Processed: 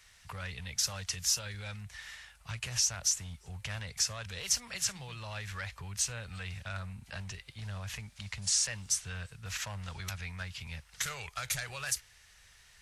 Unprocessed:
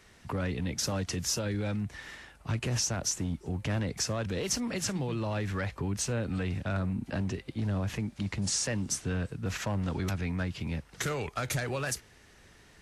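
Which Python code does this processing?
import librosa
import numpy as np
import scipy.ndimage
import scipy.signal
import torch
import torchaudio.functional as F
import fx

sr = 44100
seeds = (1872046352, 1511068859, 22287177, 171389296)

y = fx.tone_stack(x, sr, knobs='10-0-10')
y = F.gain(torch.from_numpy(y), 3.0).numpy()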